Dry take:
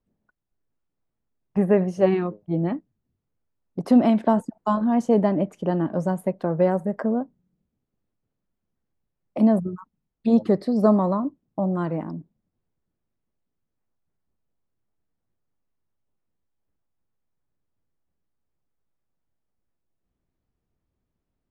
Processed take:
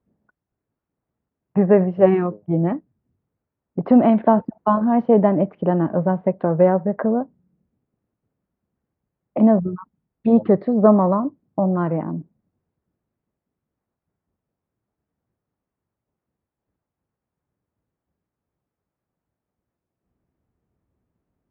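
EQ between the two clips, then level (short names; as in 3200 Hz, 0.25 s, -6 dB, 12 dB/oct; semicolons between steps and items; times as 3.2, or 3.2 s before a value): HPF 60 Hz; dynamic EQ 260 Hz, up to -4 dB, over -31 dBFS, Q 1.3; Gaussian blur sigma 3.7 samples; +6.5 dB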